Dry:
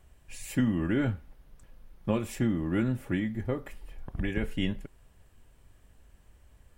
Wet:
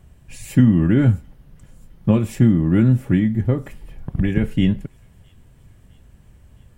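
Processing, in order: bell 140 Hz +12.5 dB 2 oct; on a send: thin delay 0.661 s, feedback 64%, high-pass 4400 Hz, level -20 dB; on the sum: gain +4.5 dB

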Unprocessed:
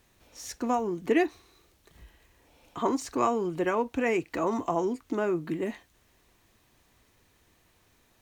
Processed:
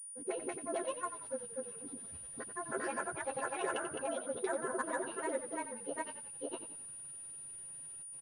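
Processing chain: delay-line pitch shifter +7 st; treble ducked by the level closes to 2800 Hz, closed at -24.5 dBFS; comb 7.5 ms, depth 87%; compressor 5:1, threshold -32 dBFS, peak gain reduction 14.5 dB; dispersion highs, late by 76 ms, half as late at 440 Hz; grains, spray 0.888 s, pitch spread up and down by 0 st; frequency-shifting echo 89 ms, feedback 43%, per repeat -34 Hz, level -10.5 dB; pulse-width modulation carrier 9500 Hz; gain -1.5 dB

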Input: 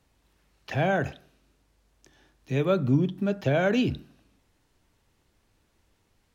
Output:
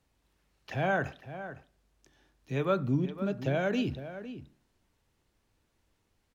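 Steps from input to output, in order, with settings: 0.83–2.85 dynamic EQ 1200 Hz, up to +7 dB, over -42 dBFS, Q 1.1; outdoor echo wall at 87 m, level -12 dB; gain -6 dB

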